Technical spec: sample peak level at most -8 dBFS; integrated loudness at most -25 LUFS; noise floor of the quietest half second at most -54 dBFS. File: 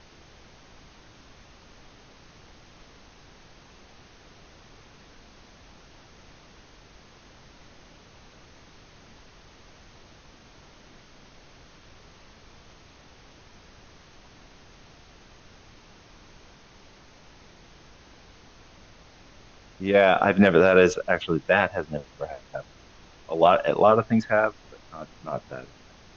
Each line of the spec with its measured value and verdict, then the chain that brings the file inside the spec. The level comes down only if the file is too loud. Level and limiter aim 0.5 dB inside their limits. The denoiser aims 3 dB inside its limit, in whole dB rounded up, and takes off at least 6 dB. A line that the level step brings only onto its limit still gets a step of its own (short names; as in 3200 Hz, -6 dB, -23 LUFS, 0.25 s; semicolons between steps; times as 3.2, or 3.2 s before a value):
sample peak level -5.0 dBFS: fail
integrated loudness -22.0 LUFS: fail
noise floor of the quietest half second -52 dBFS: fail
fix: gain -3.5 dB